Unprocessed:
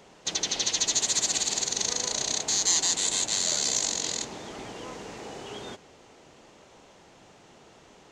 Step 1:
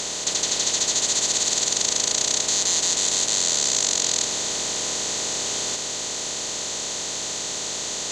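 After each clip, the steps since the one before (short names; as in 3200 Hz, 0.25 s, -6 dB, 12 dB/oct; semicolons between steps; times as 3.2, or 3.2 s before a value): per-bin compression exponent 0.2; gain -2.5 dB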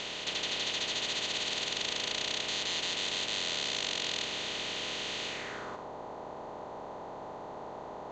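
low-pass sweep 2900 Hz -> 890 Hz, 5.26–5.87; gain -8 dB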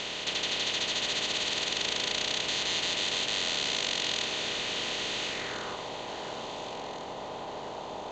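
echo with dull and thin repeats by turns 0.699 s, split 2000 Hz, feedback 70%, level -9 dB; gain +3 dB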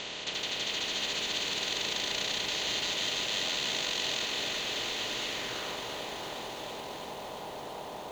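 lo-fi delay 0.337 s, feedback 80%, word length 8-bit, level -5.5 dB; gain -3.5 dB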